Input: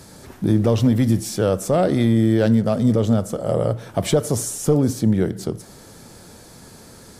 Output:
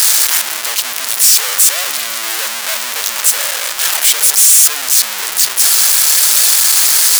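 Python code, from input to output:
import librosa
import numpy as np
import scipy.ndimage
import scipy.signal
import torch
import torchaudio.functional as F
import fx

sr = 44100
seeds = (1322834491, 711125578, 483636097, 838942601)

y = np.sign(x) * np.sqrt(np.mean(np.square(x)))
y = scipy.signal.sosfilt(scipy.signal.butter(2, 1300.0, 'highpass', fs=sr, output='sos'), y)
y = fx.high_shelf(y, sr, hz=3700.0, db=10.0)
y = F.gain(torch.from_numpy(y), 5.0).numpy()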